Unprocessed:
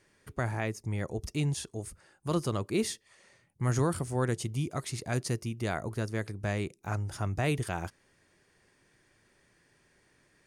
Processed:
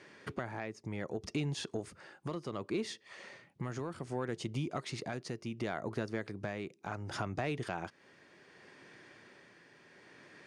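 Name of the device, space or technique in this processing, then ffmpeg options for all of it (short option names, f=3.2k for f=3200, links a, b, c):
AM radio: -af "highpass=180,lowpass=4.3k,acompressor=threshold=-45dB:ratio=5,asoftclip=type=tanh:threshold=-33.5dB,tremolo=f=0.67:d=0.4,volume=12dB"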